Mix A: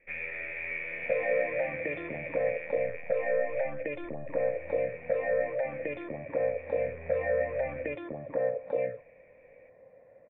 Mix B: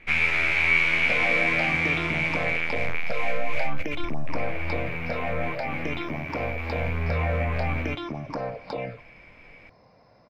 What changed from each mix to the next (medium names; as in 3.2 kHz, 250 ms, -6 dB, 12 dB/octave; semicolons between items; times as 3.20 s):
second sound -9.5 dB; master: remove cascade formant filter e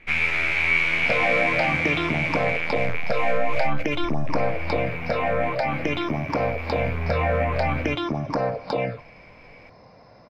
second sound +7.0 dB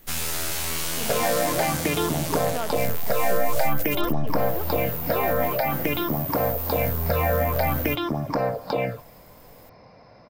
speech: unmuted; first sound: remove resonant low-pass 2.3 kHz, resonance Q 16